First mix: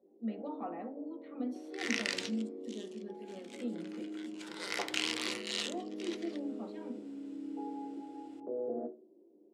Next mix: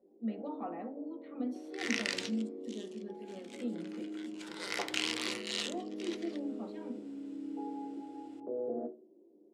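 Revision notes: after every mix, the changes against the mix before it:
master: add low shelf 120 Hz +4.5 dB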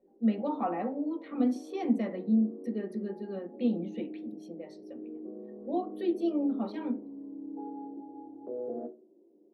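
speech +10.0 dB; second sound: muted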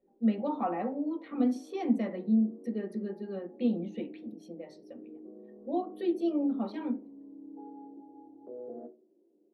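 background -6.0 dB

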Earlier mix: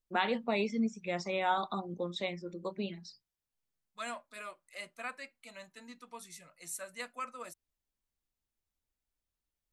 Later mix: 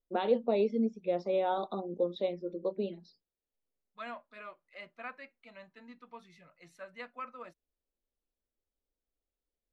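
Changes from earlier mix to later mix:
first voice: add graphic EQ 125/250/500/1000/2000/4000 Hz -11/+3/+10/-4/-11/+5 dB; master: add air absorption 310 m

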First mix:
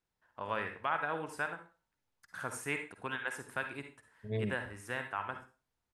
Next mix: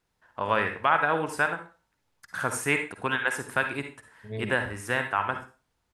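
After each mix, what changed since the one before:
first voice +11.0 dB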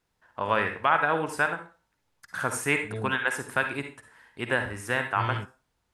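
second voice: entry -1.40 s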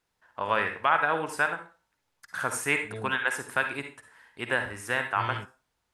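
master: add low shelf 400 Hz -6 dB

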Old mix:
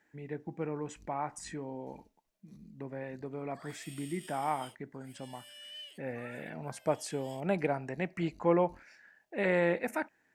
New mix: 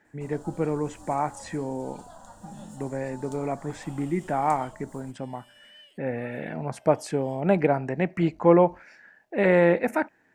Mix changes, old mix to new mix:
speech +10.0 dB; first sound: unmuted; master: add high shelf 2300 Hz -9 dB

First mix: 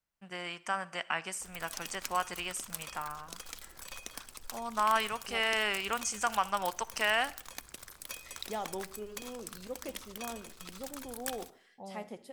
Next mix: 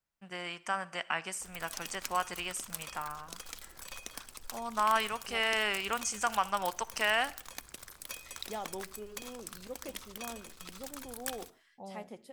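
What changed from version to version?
second voice: send off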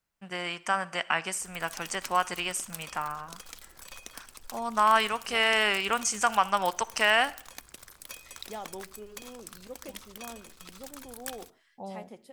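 first voice +6.0 dB; background: send -6.0 dB

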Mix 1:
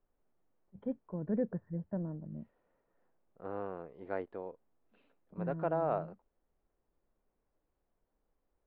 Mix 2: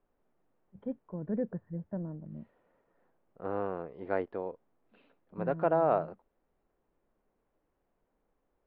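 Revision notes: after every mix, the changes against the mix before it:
second voice +6.0 dB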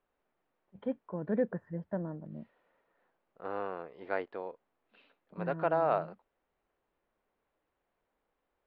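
first voice +8.0 dB; master: add tilt +3.5 dB/oct

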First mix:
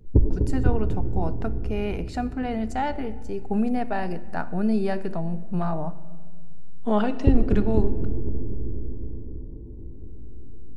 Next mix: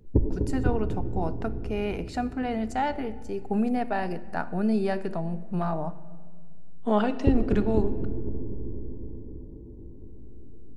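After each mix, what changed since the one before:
master: add low shelf 120 Hz -7.5 dB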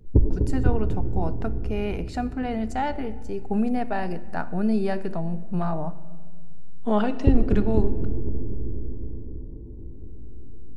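master: add low shelf 120 Hz +7.5 dB

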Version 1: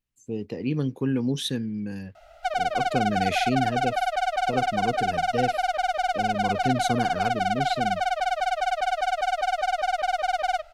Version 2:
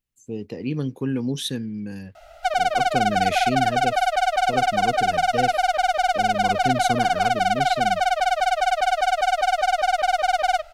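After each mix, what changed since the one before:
background +4.5 dB; master: add high shelf 6400 Hz +5 dB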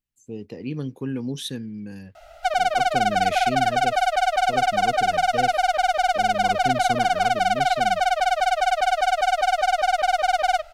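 speech -3.5 dB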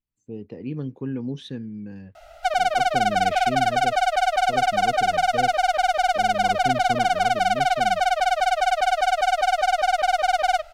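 speech: add tape spacing loss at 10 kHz 25 dB

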